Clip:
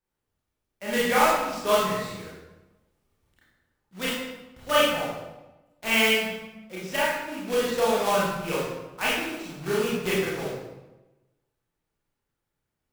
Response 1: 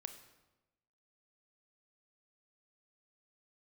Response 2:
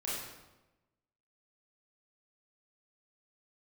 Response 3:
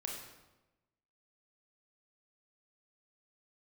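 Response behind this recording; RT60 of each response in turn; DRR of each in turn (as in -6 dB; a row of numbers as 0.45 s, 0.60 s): 2; 1.0 s, 1.0 s, 1.1 s; 8.0 dB, -8.0 dB, -0.5 dB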